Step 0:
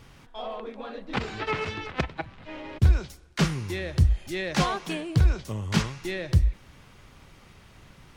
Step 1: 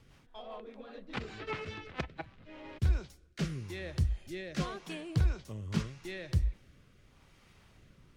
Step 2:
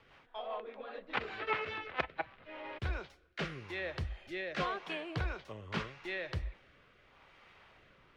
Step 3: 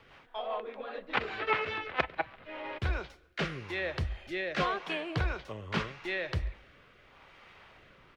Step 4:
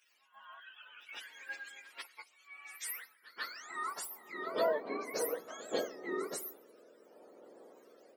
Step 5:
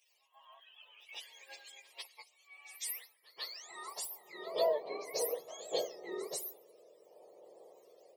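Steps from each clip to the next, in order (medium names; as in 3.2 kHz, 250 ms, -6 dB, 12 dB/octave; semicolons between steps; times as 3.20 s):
rotary cabinet horn 5 Hz, later 0.85 Hz, at 1.76 s; trim -7.5 dB
three-band isolator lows -16 dB, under 440 Hz, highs -22 dB, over 3.6 kHz; trim +6.5 dB
echo from a far wall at 24 m, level -26 dB; trim +5 dB
spectrum inverted on a logarithmic axis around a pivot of 840 Hz; reverse echo 144 ms -17 dB; high-pass sweep 2.5 kHz -> 480 Hz, 2.72–4.76 s; trim -3 dB
dynamic bell 4 kHz, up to +5 dB, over -57 dBFS, Q 1.1; static phaser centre 610 Hz, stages 4; trim +1 dB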